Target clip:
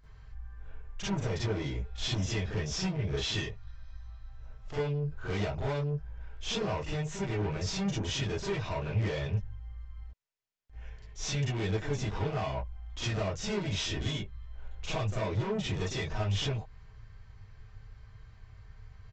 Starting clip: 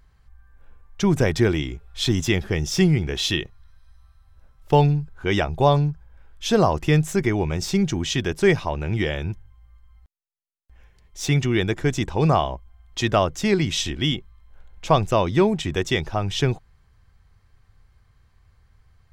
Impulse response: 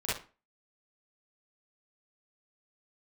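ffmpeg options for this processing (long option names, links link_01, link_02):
-filter_complex "[0:a]acompressor=threshold=-26dB:ratio=6,aresample=16000,asoftclip=type=tanh:threshold=-34dB,aresample=44100[link_01];[1:a]atrim=start_sample=2205,atrim=end_sample=3528[link_02];[link_01][link_02]afir=irnorm=-1:irlink=0,volume=-2dB"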